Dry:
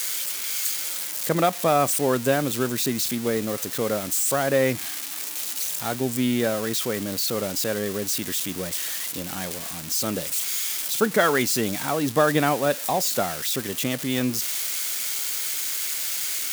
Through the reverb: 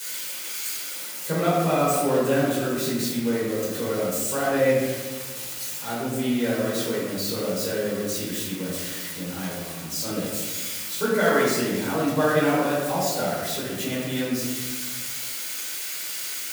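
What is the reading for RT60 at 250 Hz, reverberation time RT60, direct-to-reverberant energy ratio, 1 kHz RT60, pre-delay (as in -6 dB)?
1.7 s, 1.4 s, -8.5 dB, 1.2 s, 5 ms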